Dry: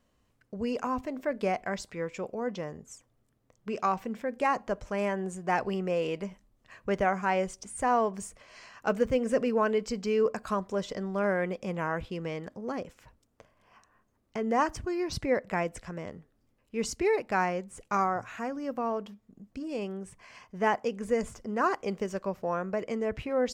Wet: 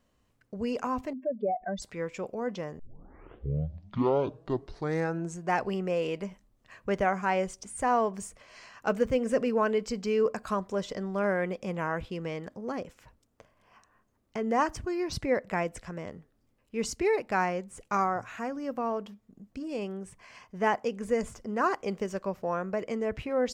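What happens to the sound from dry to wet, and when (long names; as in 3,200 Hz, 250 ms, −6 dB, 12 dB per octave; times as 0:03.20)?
0:01.13–0:01.82: expanding power law on the bin magnitudes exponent 2.8
0:02.79: tape start 2.74 s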